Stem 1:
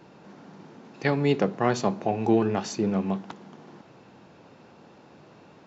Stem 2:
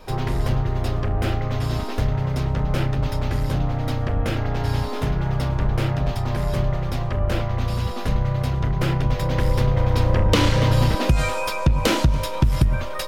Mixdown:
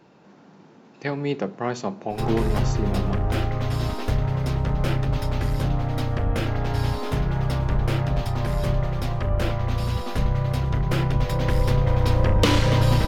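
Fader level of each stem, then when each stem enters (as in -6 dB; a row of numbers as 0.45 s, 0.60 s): -3.0 dB, -1.0 dB; 0.00 s, 2.10 s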